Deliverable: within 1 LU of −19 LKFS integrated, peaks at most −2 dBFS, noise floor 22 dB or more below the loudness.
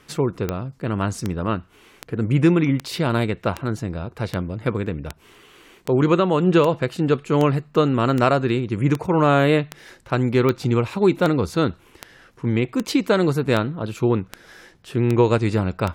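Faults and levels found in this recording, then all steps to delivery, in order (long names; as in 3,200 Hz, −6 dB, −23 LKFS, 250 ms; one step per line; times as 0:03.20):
number of clicks 21; integrated loudness −21.0 LKFS; sample peak −6.0 dBFS; target loudness −19.0 LKFS
→ click removal
level +2 dB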